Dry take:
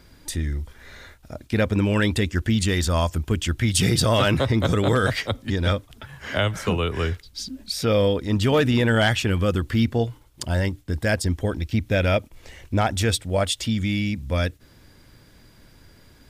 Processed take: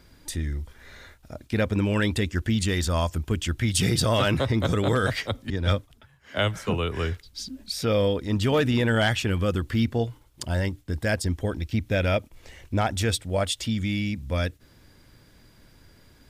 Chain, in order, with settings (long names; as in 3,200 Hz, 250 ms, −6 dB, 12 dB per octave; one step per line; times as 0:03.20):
0:05.50–0:06.74: multiband upward and downward expander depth 100%
level −3 dB